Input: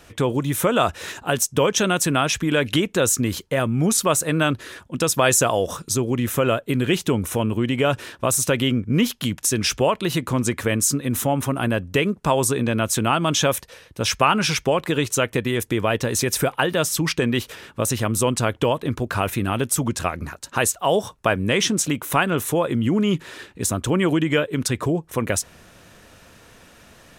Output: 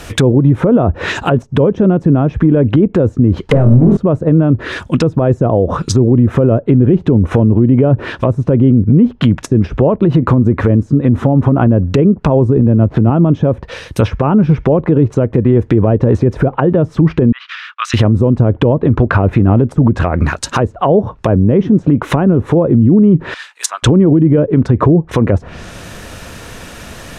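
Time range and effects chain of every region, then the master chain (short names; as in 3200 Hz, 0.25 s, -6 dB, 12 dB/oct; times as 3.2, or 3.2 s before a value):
3.49–3.97 notches 50/100/150/200/250/300/350/400 Hz + power-law curve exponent 0.5 + flutter echo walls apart 4.2 m, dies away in 0.25 s
12.57–13.1 switching dead time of 0.072 ms + HPF 45 Hz 24 dB/oct + low shelf 170 Hz +3.5 dB
17.32–17.94 elliptic high-pass 1200 Hz, stop band 70 dB + gate -56 dBFS, range -30 dB + air absorption 240 m
23.34–23.83 HPF 930 Hz 24 dB/oct + upward expander, over -35 dBFS
whole clip: treble ducked by the level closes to 430 Hz, closed at -17.5 dBFS; low shelf 120 Hz +5.5 dB; maximiser +17.5 dB; gain -1 dB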